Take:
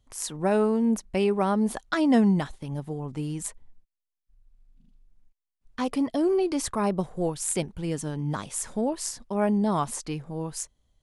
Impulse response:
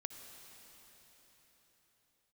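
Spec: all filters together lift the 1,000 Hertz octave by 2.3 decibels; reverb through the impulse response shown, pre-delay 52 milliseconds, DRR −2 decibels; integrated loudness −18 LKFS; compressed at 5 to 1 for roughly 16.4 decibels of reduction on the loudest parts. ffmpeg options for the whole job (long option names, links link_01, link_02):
-filter_complex "[0:a]equalizer=frequency=1000:width_type=o:gain=3,acompressor=threshold=-35dB:ratio=5,asplit=2[link_01][link_02];[1:a]atrim=start_sample=2205,adelay=52[link_03];[link_02][link_03]afir=irnorm=-1:irlink=0,volume=4.5dB[link_04];[link_01][link_04]amix=inputs=2:normalize=0,volume=16dB"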